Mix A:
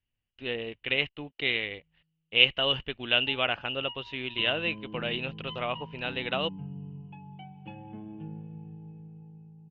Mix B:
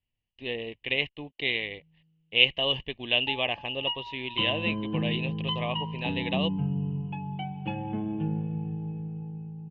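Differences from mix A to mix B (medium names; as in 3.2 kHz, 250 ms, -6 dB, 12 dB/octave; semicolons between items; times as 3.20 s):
speech: add Butterworth band-stop 1.4 kHz, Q 2.2; background +11.0 dB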